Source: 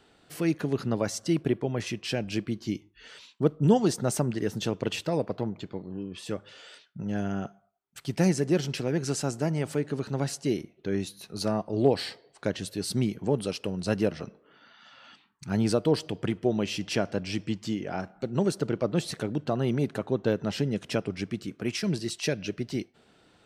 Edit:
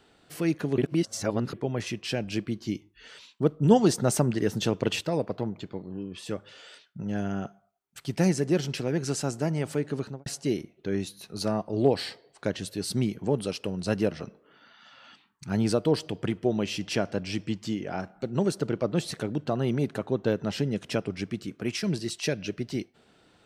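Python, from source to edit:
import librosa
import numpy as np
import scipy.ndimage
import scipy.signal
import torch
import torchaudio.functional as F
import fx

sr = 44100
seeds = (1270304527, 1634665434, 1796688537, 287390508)

y = fx.studio_fade_out(x, sr, start_s=10.0, length_s=0.26)
y = fx.edit(y, sr, fx.reverse_span(start_s=0.78, length_s=0.75),
    fx.clip_gain(start_s=3.71, length_s=1.3, db=3.0), tone=tone)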